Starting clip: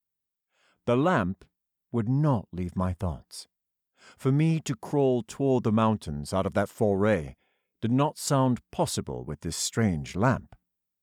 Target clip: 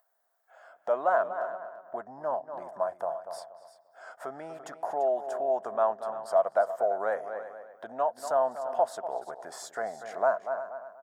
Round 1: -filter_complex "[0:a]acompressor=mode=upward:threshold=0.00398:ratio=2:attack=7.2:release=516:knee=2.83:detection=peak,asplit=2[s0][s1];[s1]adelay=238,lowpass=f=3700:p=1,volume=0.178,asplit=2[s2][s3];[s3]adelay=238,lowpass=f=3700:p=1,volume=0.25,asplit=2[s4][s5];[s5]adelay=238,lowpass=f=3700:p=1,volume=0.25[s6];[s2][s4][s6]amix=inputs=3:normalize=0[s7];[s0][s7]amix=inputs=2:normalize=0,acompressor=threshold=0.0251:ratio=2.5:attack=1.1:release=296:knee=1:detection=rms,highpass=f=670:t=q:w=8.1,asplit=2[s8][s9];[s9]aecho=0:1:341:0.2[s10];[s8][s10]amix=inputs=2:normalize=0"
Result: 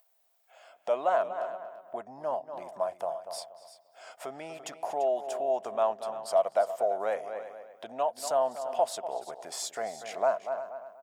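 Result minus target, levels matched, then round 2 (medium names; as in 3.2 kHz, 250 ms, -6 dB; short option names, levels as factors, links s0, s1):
4 kHz band +10.0 dB
-filter_complex "[0:a]acompressor=mode=upward:threshold=0.00398:ratio=2:attack=7.2:release=516:knee=2.83:detection=peak,asplit=2[s0][s1];[s1]adelay=238,lowpass=f=3700:p=1,volume=0.178,asplit=2[s2][s3];[s3]adelay=238,lowpass=f=3700:p=1,volume=0.25,asplit=2[s4][s5];[s5]adelay=238,lowpass=f=3700:p=1,volume=0.25[s6];[s2][s4][s6]amix=inputs=3:normalize=0[s7];[s0][s7]amix=inputs=2:normalize=0,acompressor=threshold=0.0251:ratio=2.5:attack=1.1:release=296:knee=1:detection=rms,highpass=f=670:t=q:w=8.1,highshelf=f=2000:t=q:w=3:g=-7,asplit=2[s8][s9];[s9]aecho=0:1:341:0.2[s10];[s8][s10]amix=inputs=2:normalize=0"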